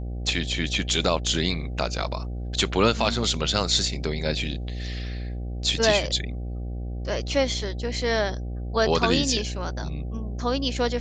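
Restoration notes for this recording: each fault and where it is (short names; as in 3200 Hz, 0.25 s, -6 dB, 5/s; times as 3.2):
buzz 60 Hz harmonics 13 -31 dBFS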